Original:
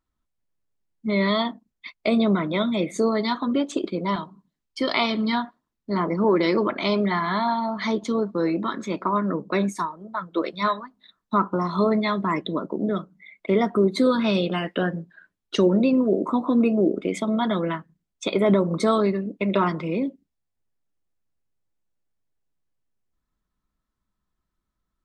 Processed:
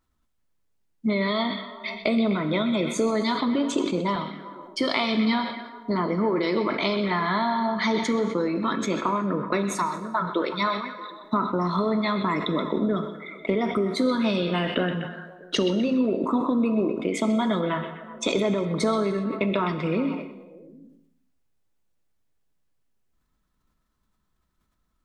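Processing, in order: compressor 5:1, threshold -27 dBFS, peak gain reduction 12 dB; delay with a stepping band-pass 0.126 s, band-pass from 3200 Hz, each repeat -0.7 oct, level -8 dB; non-linear reverb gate 0.43 s falling, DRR 9.5 dB; sustainer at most 71 dB/s; gain +5 dB

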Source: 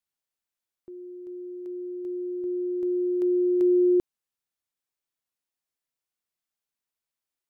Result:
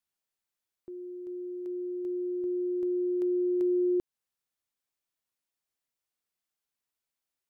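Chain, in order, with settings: compressor 2:1, threshold -30 dBFS, peak gain reduction 6.5 dB

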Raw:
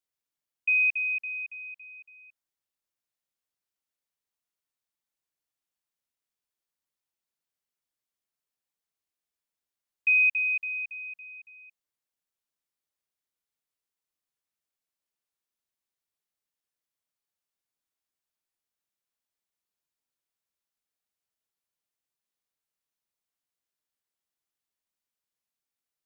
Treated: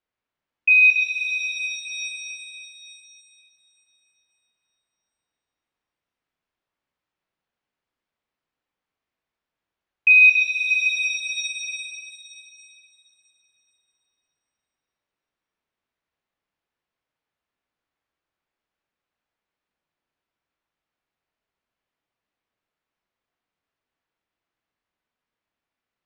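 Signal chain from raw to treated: low-pass opened by the level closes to 2400 Hz, open at -33 dBFS; 10.7–11.54 frequency shift +17 Hz; shimmer reverb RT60 2.9 s, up +7 st, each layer -8 dB, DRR 1 dB; gain +8.5 dB

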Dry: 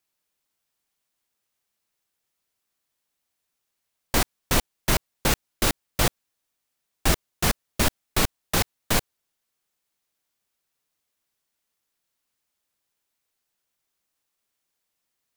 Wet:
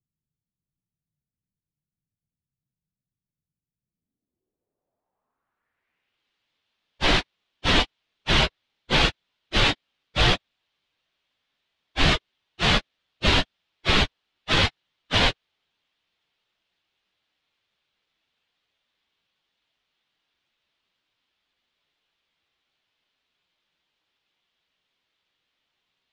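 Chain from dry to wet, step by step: plain phase-vocoder stretch 1.7×; careless resampling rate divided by 3×, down none, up hold; low-pass sweep 150 Hz -> 3400 Hz, 3.74–6.26; gain +3 dB

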